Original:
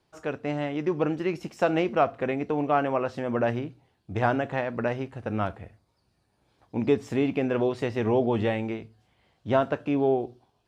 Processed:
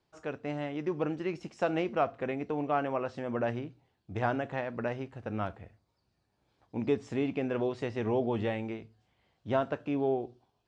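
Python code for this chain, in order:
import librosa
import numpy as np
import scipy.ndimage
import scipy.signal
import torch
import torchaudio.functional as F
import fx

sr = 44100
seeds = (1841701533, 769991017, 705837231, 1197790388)

y = scipy.signal.sosfilt(scipy.signal.butter(4, 8300.0, 'lowpass', fs=sr, output='sos'), x)
y = F.gain(torch.from_numpy(y), -6.0).numpy()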